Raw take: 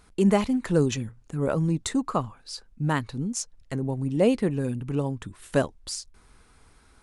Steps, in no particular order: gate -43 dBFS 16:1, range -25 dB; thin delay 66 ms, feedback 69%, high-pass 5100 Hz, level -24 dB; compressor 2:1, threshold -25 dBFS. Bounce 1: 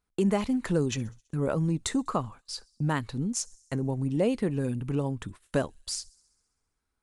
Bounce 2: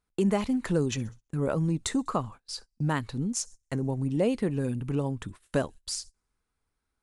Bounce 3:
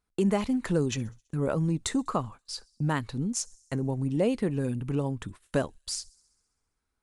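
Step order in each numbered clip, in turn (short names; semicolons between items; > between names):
gate > thin delay > compressor; thin delay > compressor > gate; compressor > gate > thin delay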